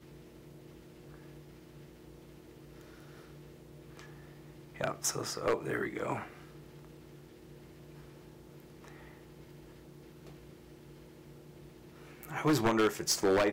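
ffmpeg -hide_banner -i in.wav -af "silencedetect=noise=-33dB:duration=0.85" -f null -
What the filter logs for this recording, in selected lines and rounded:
silence_start: 0.00
silence_end: 4.81 | silence_duration: 4.81
silence_start: 6.23
silence_end: 12.23 | silence_duration: 6.00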